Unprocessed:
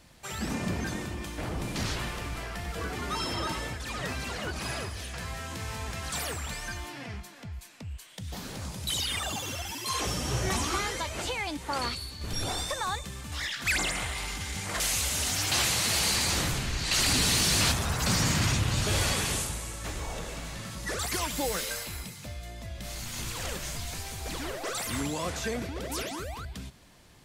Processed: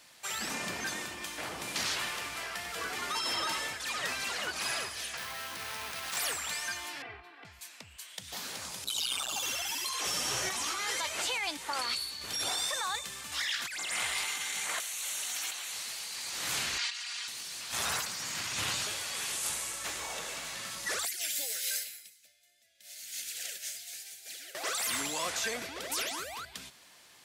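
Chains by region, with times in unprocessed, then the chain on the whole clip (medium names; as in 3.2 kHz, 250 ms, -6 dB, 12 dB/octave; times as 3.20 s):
5.17–6.17 s: self-modulated delay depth 0.31 ms + careless resampling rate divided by 3×, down filtered, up hold
7.02–7.45 s: distance through air 480 m + band-stop 6.8 kHz, Q 14 + comb 2.6 ms, depth 88%
8.84–9.43 s: Butterworth band-stop 1.9 kHz, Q 2.6 + transformer saturation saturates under 770 Hz
14.24–15.73 s: high-pass 330 Hz 6 dB/octave + band-stop 5 kHz, Q 5.2
16.78–17.28 s: high-pass 1.2 kHz + distance through air 93 m + comb 4.2 ms, depth 99%
21.05–24.55 s: Chebyshev band-stop 670–1600 Hz + tilt EQ +2.5 dB/octave + upward expansion 2.5:1, over -43 dBFS
whole clip: high-pass 1.4 kHz 6 dB/octave; compressor with a negative ratio -36 dBFS, ratio -1; trim +1.5 dB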